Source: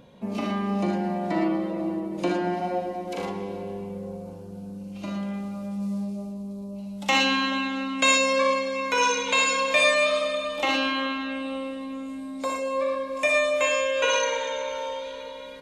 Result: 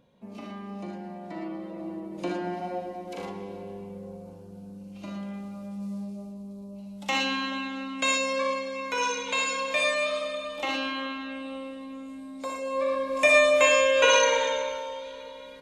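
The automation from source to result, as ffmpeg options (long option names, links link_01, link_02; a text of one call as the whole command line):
ffmpeg -i in.wav -af "volume=3.5dB,afade=type=in:start_time=1.4:duration=0.9:silence=0.473151,afade=type=in:start_time=12.56:duration=0.77:silence=0.354813,afade=type=out:start_time=14.44:duration=0.4:silence=0.421697" out.wav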